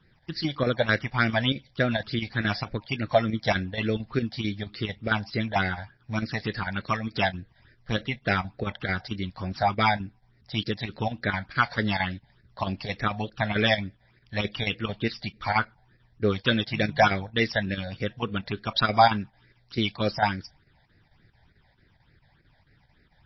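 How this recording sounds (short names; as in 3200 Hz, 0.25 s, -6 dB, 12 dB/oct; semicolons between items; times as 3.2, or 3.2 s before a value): chopped level 4.5 Hz, depth 60%, duty 85%; phasing stages 8, 3.4 Hz, lowest notch 340–1000 Hz; MP3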